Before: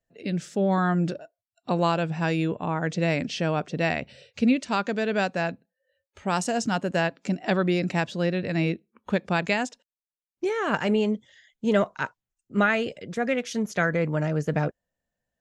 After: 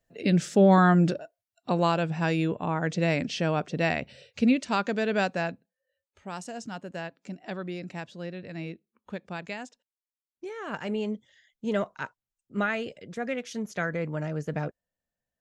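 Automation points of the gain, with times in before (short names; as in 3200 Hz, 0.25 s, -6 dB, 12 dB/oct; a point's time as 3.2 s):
0.62 s +5.5 dB
1.71 s -1 dB
5.28 s -1 dB
6.31 s -12 dB
10.46 s -12 dB
11.12 s -6 dB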